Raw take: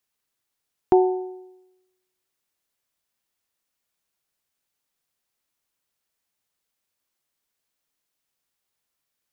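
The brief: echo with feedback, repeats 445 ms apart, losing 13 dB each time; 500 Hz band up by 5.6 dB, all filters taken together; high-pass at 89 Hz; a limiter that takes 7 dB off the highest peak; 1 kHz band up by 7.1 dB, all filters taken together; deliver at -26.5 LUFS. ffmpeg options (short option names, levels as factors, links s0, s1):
-af "highpass=89,equalizer=f=500:t=o:g=9,equalizer=f=1000:t=o:g=5.5,alimiter=limit=0.422:level=0:latency=1,aecho=1:1:445|890|1335:0.224|0.0493|0.0108,volume=0.531"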